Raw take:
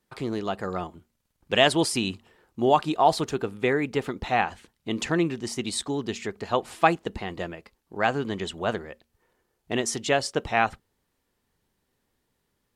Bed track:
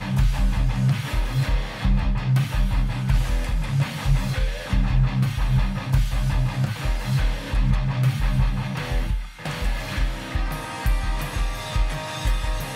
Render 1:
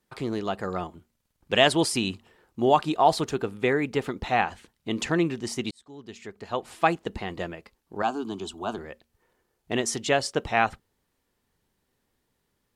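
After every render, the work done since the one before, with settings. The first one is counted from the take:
0:05.71–0:07.19: fade in
0:08.02–0:08.78: phaser with its sweep stopped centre 520 Hz, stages 6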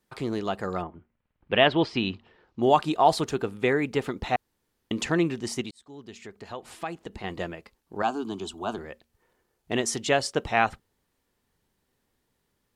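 0:00.81–0:02.61: low-pass filter 2,100 Hz → 5,500 Hz 24 dB per octave
0:04.36–0:04.91: fill with room tone
0:05.61–0:07.24: downward compressor 2 to 1, threshold −38 dBFS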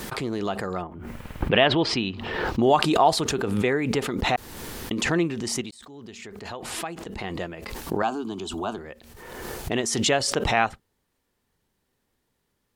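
background raised ahead of every attack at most 36 dB per second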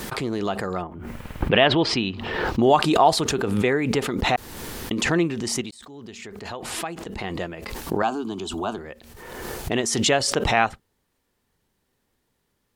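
level +2 dB
brickwall limiter −2 dBFS, peak gain reduction 3 dB

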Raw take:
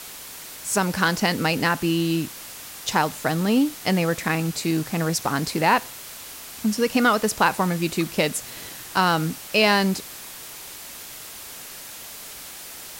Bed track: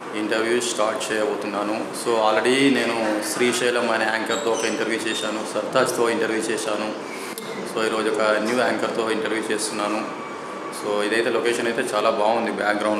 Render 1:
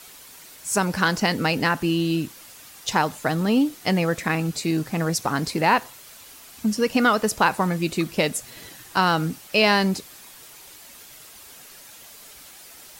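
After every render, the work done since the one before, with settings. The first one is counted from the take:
broadband denoise 8 dB, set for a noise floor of −39 dBFS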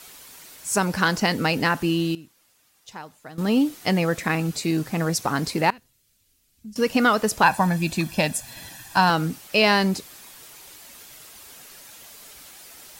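0:01.85–0:03.68: duck −17.5 dB, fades 0.30 s logarithmic
0:05.70–0:06.76: guitar amp tone stack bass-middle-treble 10-0-1
0:07.43–0:09.10: comb filter 1.2 ms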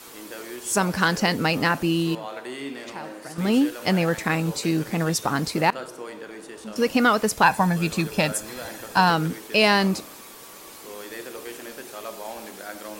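mix in bed track −16.5 dB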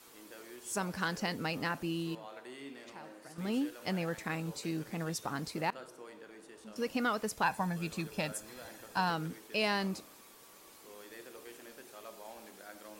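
level −13.5 dB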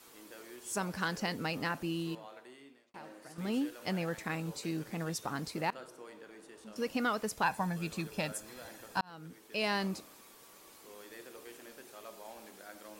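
0:02.10–0:02.94: fade out
0:09.01–0:09.76: fade in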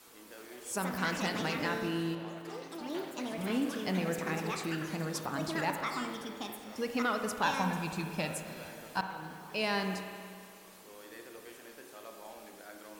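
spring reverb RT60 2.2 s, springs 32/54 ms, chirp 35 ms, DRR 5 dB
delay with pitch and tempo change per echo 275 ms, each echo +5 semitones, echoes 3, each echo −6 dB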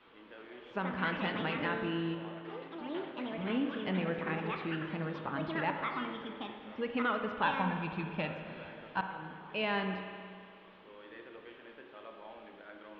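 elliptic low-pass filter 3,300 Hz, stop band 70 dB
notch filter 720 Hz, Q 16

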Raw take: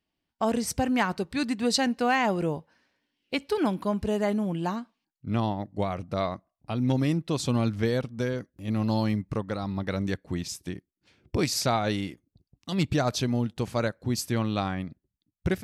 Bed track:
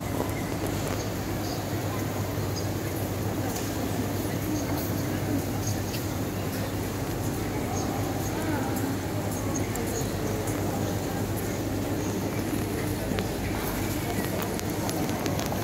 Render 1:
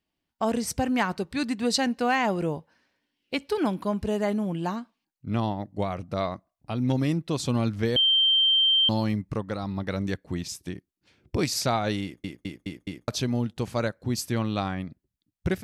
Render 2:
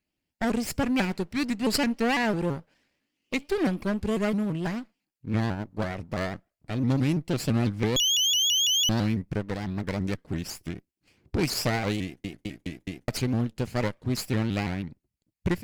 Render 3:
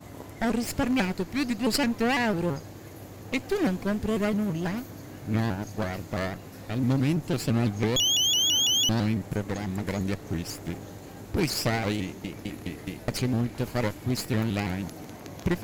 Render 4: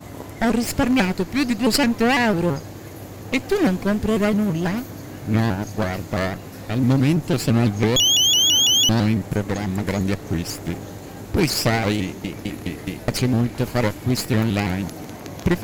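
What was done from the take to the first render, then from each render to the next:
0:07.96–0:08.89: beep over 3,140 Hz −17.5 dBFS; 0:12.03: stutter in place 0.21 s, 5 plays
lower of the sound and its delayed copy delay 0.4 ms; pitch modulation by a square or saw wave saw up 6 Hz, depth 160 cents
mix in bed track −13.5 dB
level +7 dB

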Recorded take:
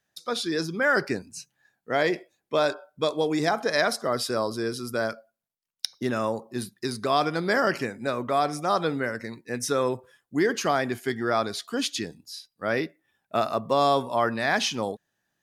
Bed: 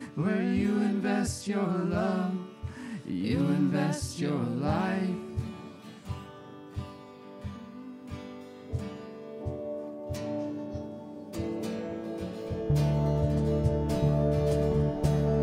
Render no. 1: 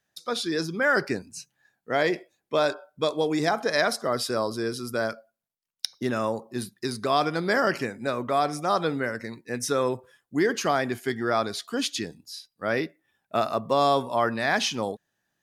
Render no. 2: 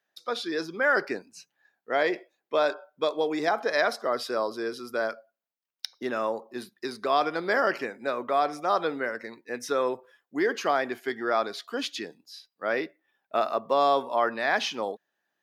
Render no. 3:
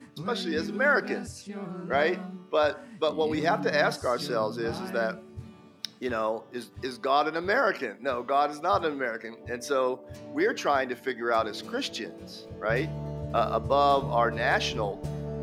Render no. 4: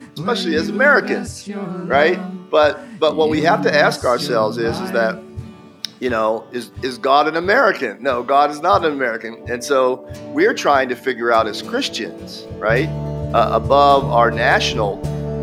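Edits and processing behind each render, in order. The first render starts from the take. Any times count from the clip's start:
no processing that can be heard
high-pass filter 350 Hz 12 dB per octave; parametric band 9,100 Hz −12.5 dB 1.4 octaves
mix in bed −8.5 dB
level +11 dB; brickwall limiter −1 dBFS, peak gain reduction 1.5 dB

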